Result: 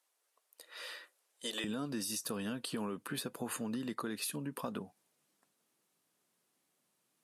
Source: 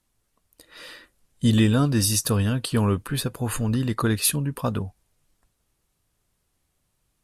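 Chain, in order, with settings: high-pass 450 Hz 24 dB/octave, from 1.64 s 190 Hz; peak limiter -16 dBFS, peak gain reduction 9 dB; compression 4:1, threshold -33 dBFS, peak gain reduction 10.5 dB; trim -3.5 dB

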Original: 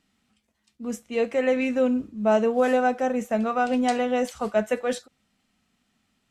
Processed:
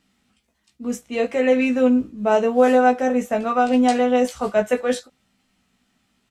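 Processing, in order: doubling 16 ms -4.5 dB; trim +3 dB

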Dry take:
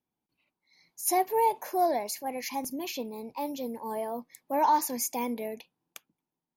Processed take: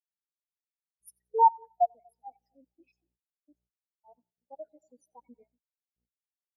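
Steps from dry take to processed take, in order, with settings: random holes in the spectrogram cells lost 75%; bass shelf 360 Hz -7 dB; mains buzz 60 Hz, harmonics 15, -49 dBFS -4 dB/octave; 4.17–5.16 s: bass shelf 61 Hz -9.5 dB; two-band feedback delay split 720 Hz, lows 238 ms, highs 89 ms, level -11 dB; gate with hold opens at -36 dBFS; spectral contrast expander 2.5:1; trim +4.5 dB

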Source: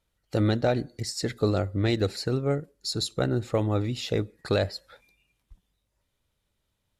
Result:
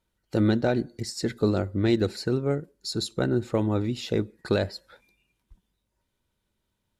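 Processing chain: small resonant body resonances 220/350/940/1500 Hz, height 7 dB, ringing for 40 ms; trim -2 dB

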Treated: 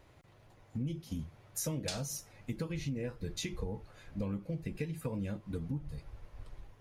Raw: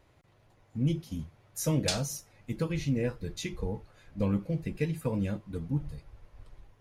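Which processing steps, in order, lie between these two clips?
compression 5:1, threshold -37 dBFS, peak gain reduction 13.5 dB; trim +2.5 dB

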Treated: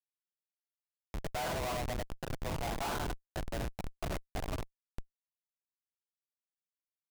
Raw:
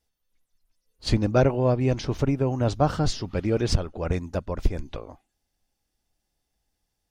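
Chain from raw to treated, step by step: gated-style reverb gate 130 ms flat, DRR -2.5 dB; mistuned SSB +110 Hz 600–2300 Hz; Schmitt trigger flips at -27.5 dBFS; trim -3.5 dB

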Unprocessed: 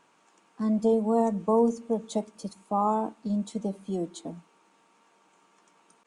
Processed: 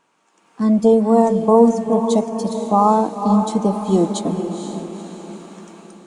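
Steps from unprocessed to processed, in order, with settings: level rider gain up to 16.5 dB; on a send: echo that smears into a reverb 480 ms, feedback 48%, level -7.5 dB; on the sum: trim -1 dB

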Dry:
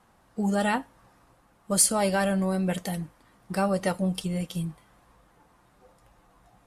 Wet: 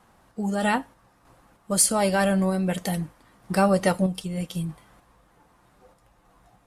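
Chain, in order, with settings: random-step tremolo 3.2 Hz; trim +5.5 dB

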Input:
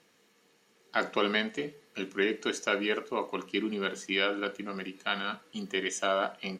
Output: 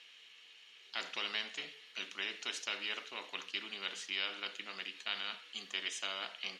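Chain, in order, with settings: band-pass filter 3 kHz, Q 4.1; spectrum-flattening compressor 2:1; trim +1.5 dB

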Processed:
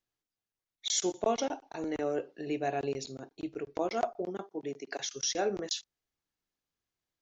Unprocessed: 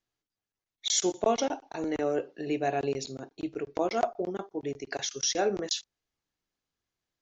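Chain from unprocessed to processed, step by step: 4.26–4.99 s: high-pass 83 Hz -> 220 Hz 24 dB/octave; trim -3.5 dB

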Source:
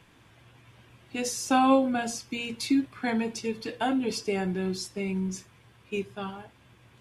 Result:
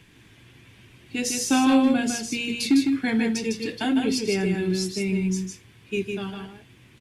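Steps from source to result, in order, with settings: high-order bell 840 Hz -8.5 dB; hard clipper -18 dBFS, distortion -26 dB; on a send: delay 155 ms -4.5 dB; on the sum: trim +5 dB

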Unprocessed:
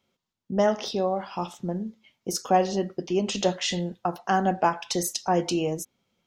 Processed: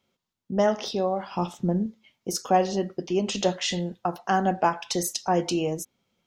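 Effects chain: 1.31–1.86 s: bass shelf 460 Hz +7 dB

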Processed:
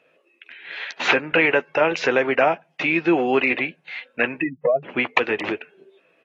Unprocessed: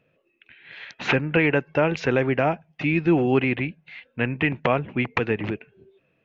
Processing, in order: 4.40–4.83 s: spectral contrast enhancement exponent 4; high-pass 430 Hz 12 dB/octave; in parallel at -0.5 dB: compression 6:1, threshold -30 dBFS, peak gain reduction 12 dB; on the sum: doubling 12 ms -12 dB; trim +2.5 dB; AAC 32 kbps 32 kHz

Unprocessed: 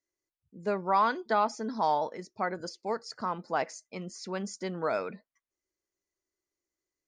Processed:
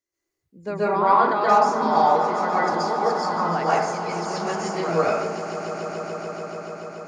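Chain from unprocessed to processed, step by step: 0.74–1.31 s: treble shelf 3.5 kHz -11.5 dB; echo with a slow build-up 144 ms, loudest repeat 5, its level -13.5 dB; plate-style reverb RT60 0.68 s, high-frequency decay 0.5×, pre-delay 115 ms, DRR -8.5 dB

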